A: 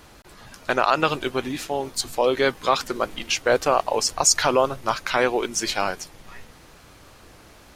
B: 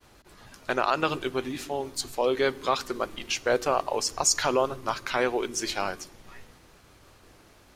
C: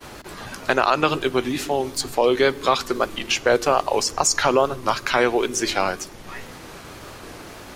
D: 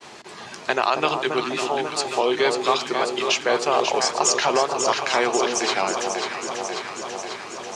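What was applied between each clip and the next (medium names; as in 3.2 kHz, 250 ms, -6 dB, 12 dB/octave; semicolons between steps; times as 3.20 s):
expander -46 dBFS; peaking EQ 380 Hz +2.5 dB 0.28 oct; on a send at -20 dB: reverberation RT60 1.2 s, pre-delay 3 ms; on the sum: trim -5.5 dB
wow and flutter 57 cents; three bands compressed up and down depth 40%; trim +7 dB
cabinet simulation 230–8200 Hz, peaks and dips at 280 Hz -9 dB, 540 Hz -6 dB, 1.4 kHz -6 dB; vibrato 0.68 Hz 13 cents; echo whose repeats swap between lows and highs 271 ms, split 1.1 kHz, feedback 84%, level -5 dB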